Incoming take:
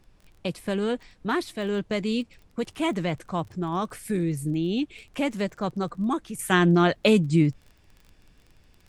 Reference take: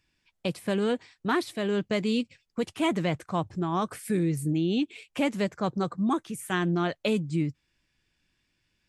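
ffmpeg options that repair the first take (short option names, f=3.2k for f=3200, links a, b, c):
-af "adeclick=t=4,agate=range=-21dB:threshold=-50dB,asetnsamples=n=441:p=0,asendcmd='6.39 volume volume -7.5dB',volume=0dB"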